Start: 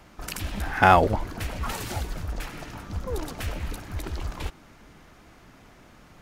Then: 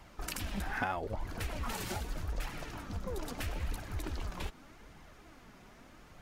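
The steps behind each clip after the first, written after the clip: compression 8:1, threshold -28 dBFS, peak gain reduction 17 dB; flange 0.8 Hz, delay 0.9 ms, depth 4.7 ms, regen +51%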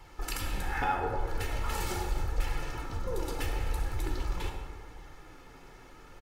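comb 2.3 ms, depth 57%; plate-style reverb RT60 1.7 s, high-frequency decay 0.5×, DRR 0.5 dB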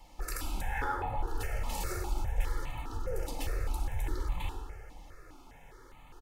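stepped phaser 4.9 Hz 400–1500 Hz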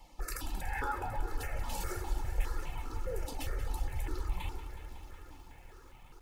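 reverb removal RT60 0.93 s; bit-crushed delay 184 ms, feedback 80%, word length 10-bit, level -12 dB; trim -1 dB

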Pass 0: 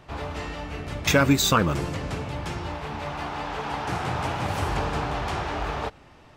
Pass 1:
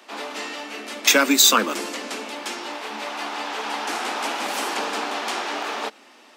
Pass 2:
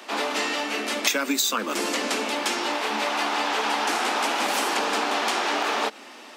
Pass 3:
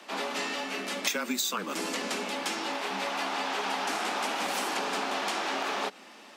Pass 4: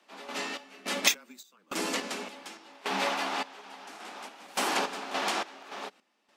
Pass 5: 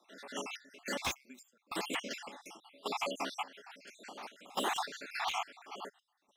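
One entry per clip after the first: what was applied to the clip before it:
steep high-pass 210 Hz 96 dB/octave; treble shelf 2.2 kHz +11.5 dB
compression 12:1, threshold -27 dBFS, peak gain reduction 17 dB; trim +6.5 dB
frequency shift -23 Hz; trim -6.5 dB
random-step tremolo, depth 95%; upward expansion 1.5:1, over -48 dBFS; trim +6.5 dB
random holes in the spectrogram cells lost 62%; slew-rate limiter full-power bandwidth 100 Hz; trim -2 dB

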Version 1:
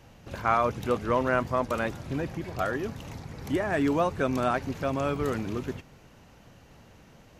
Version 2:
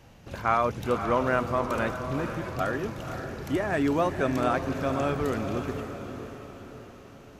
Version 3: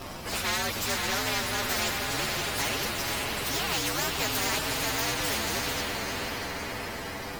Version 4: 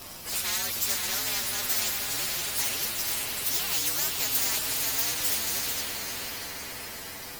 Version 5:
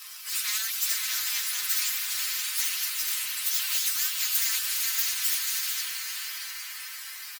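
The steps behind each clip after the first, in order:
echo that smears into a reverb 535 ms, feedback 49%, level -8 dB
frequency axis rescaled in octaves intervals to 125%; spectrum-flattening compressor 4:1
pre-emphasis filter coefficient 0.8; trim +5 dB
high-pass 1.3 kHz 24 dB/octave; comb 3.9 ms, depth 42%

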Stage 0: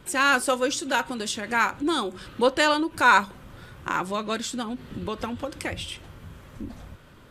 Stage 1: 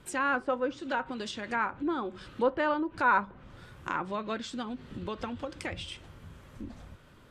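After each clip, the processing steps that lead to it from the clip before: low-pass that closes with the level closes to 1.5 kHz, closed at -21 dBFS; trim -5.5 dB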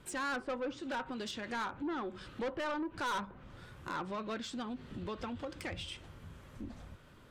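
saturation -30.5 dBFS, distortion -7 dB; trim -2 dB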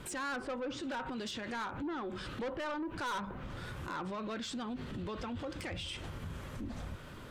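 peak limiter -44 dBFS, peak gain reduction 11.5 dB; trim +10 dB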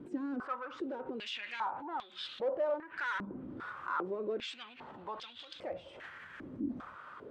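step-sequenced band-pass 2.5 Hz 290–3600 Hz; trim +10 dB

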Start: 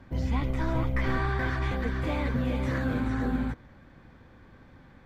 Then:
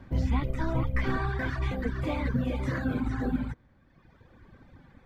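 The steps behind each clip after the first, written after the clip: reverb removal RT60 1.5 s; bass shelf 390 Hz +3.5 dB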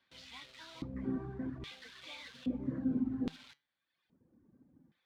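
in parallel at -5 dB: word length cut 6-bit, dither none; on the sum: LFO band-pass square 0.61 Hz 250–3700 Hz; flange 0.98 Hz, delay 5.3 ms, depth 1.8 ms, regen +85%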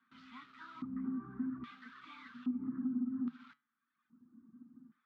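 compression 8:1, threshold -40 dBFS, peak gain reduction 12 dB; saturation -37 dBFS, distortion -18 dB; two resonant band-passes 550 Hz, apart 2.4 oct; trim +13 dB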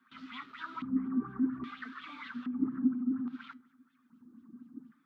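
peak limiter -34 dBFS, peak gain reduction 6.5 dB; bucket-brigade echo 200 ms, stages 2048, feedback 55%, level -22 dB; sweeping bell 4.2 Hz 270–3400 Hz +13 dB; trim +4 dB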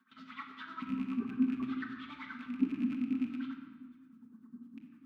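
rattle on loud lows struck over -44 dBFS, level -38 dBFS; tremolo 9.9 Hz, depth 88%; reverberation RT60 1.6 s, pre-delay 5 ms, DRR 2 dB

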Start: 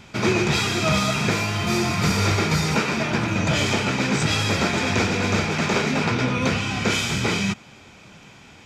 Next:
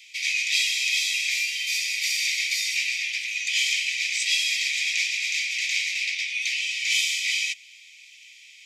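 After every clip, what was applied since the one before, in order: steep high-pass 2 kHz 96 dB/octave; trim +2.5 dB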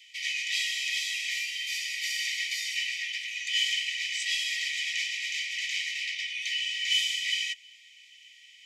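small resonant body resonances 1.9/3 kHz, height 16 dB, ringing for 45 ms; trim -8 dB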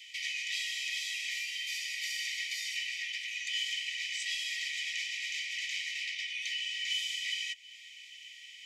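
compression 2:1, threshold -44 dBFS, peak gain reduction 12 dB; trim +3.5 dB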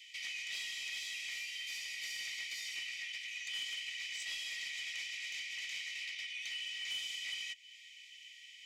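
saturation -28.5 dBFS, distortion -20 dB; trim -4.5 dB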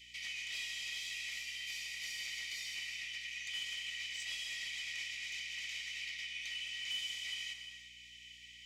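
gated-style reverb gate 370 ms flat, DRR 5 dB; hum 60 Hz, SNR 28 dB; trim -1.5 dB

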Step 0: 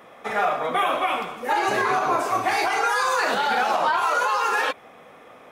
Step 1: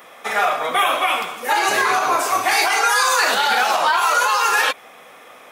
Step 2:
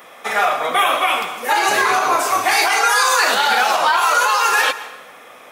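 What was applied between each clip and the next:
tilt EQ +3 dB/octave; trim +4 dB
plate-style reverb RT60 1.1 s, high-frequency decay 0.75×, pre-delay 105 ms, DRR 14.5 dB; trim +1.5 dB

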